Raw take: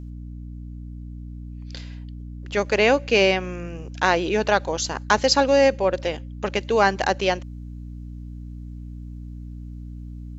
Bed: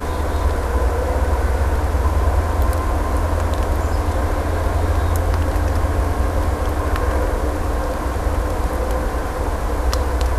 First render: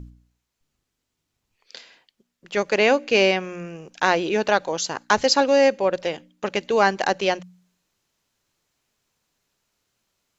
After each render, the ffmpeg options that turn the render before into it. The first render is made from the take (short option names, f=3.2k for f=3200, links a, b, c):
-af "bandreject=f=60:t=h:w=4,bandreject=f=120:t=h:w=4,bandreject=f=180:t=h:w=4,bandreject=f=240:t=h:w=4,bandreject=f=300:t=h:w=4"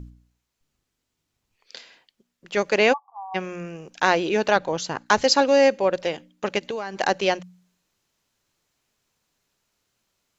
-filter_complex "[0:a]asplit=3[a][b][c];[a]afade=t=out:st=2.92:d=0.02[d];[b]asuperpass=centerf=940:order=12:qfactor=2.3,afade=t=in:st=2.92:d=0.02,afade=t=out:st=3.34:d=0.02[e];[c]afade=t=in:st=3.34:d=0.02[f];[d][e][f]amix=inputs=3:normalize=0,asettb=1/sr,asplit=3[g][h][i];[g]atrim=end=4.564[j];[h]atrim=start=4.56:end=5.06,asetpts=PTS-STARTPTS,afade=t=in:d=0.004:c=qsin,afade=t=out:st=0.496:d=0.004:c=qsin,bass=f=250:g=6,treble=f=4k:g=-7[k];[i]atrim=start=5.056[l];[j][k]acrossfade=d=0.004:c1=hsin:c2=qsin[m];[m][l]acrossfade=d=0.004:c1=qsin:c2=hsin,asplit=3[n][o][p];[n]afade=t=out:st=6.58:d=0.02[q];[o]acompressor=threshold=-25dB:ratio=16:attack=3.2:release=140:knee=1:detection=peak,afade=t=in:st=6.58:d=0.02,afade=t=out:st=6.98:d=0.02[r];[p]afade=t=in:st=6.98:d=0.02[s];[q][r][s]amix=inputs=3:normalize=0"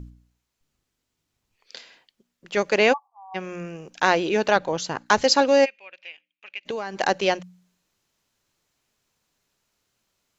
-filter_complex "[0:a]asplit=3[a][b][c];[a]afade=t=out:st=5.64:d=0.02[d];[b]bandpass=f=2.5k:t=q:w=7.3,afade=t=in:st=5.64:d=0.02,afade=t=out:st=6.65:d=0.02[e];[c]afade=t=in:st=6.65:d=0.02[f];[d][e][f]amix=inputs=3:normalize=0,asplit=2[g][h];[g]atrim=end=3.08,asetpts=PTS-STARTPTS,afade=t=out:st=3.076:d=0.004:c=hsin:silence=0.0749894[i];[h]atrim=start=3.08,asetpts=PTS-STARTPTS,afade=t=in:d=0.47:silence=0.0749894[j];[i][j]concat=n=2:v=0:a=1"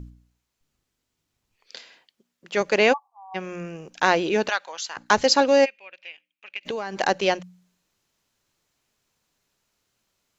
-filter_complex "[0:a]asettb=1/sr,asplit=3[a][b][c];[a]atrim=end=1.764[d];[b]atrim=start=1.76:end=2.61,asetpts=PTS-STARTPTS,afade=t=in:d=0.004:c=qsin,afade=t=out:st=0.846:d=0.004:c=qsin,highpass=f=140:p=1[e];[c]atrim=start=2.606[f];[d][e]acrossfade=d=0.004:c1=hsin:c2=qsin[g];[g][f]acrossfade=d=0.004:c1=qsin:c2=hsin,asplit=3[h][i][j];[h]afade=t=out:st=4.48:d=0.02[k];[i]highpass=1.3k,afade=t=in:st=4.48:d=0.02,afade=t=out:st=4.96:d=0.02[l];[j]afade=t=in:st=4.96:d=0.02[m];[k][l][m]amix=inputs=3:normalize=0,asettb=1/sr,asplit=3[n][o][p];[n]atrim=end=6.564[q];[o]atrim=start=6.56:end=7.08,asetpts=PTS-STARTPTS,afade=t=in:d=0.004:c=qsin,afade=t=out:st=0.516:d=0.004:c=qsin,acompressor=mode=upward:threshold=-27dB:ratio=2.5:attack=3.2:release=140:knee=2.83:detection=peak[r];[p]atrim=start=7.076[s];[q][r]acrossfade=d=0.004:c1=hsin:c2=qsin[t];[t][s]acrossfade=d=0.004:c1=qsin:c2=hsin"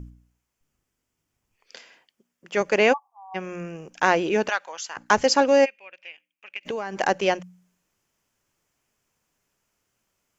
-af "equalizer=f=4k:t=o:w=0.4:g=-10.5"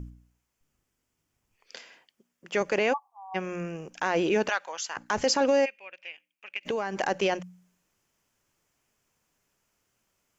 -af "alimiter=limit=-14.5dB:level=0:latency=1:release=28"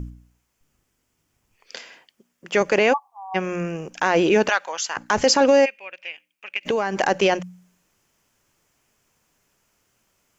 -af "volume=7.5dB"